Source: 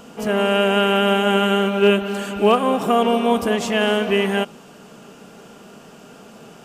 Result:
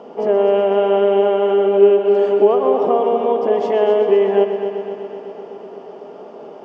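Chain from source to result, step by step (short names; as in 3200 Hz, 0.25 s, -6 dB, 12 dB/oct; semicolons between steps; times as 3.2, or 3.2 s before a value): tilt -2.5 dB/oct; compressor, threshold -17 dBFS, peak gain reduction 10 dB; speaker cabinet 400–4600 Hz, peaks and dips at 400 Hz +10 dB, 600 Hz +6 dB, 860 Hz +6 dB, 1500 Hz -9 dB, 2600 Hz -7 dB, 3900 Hz -9 dB; on a send: multi-head echo 0.126 s, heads first and second, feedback 68%, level -12 dB; on the sum: gain +2 dB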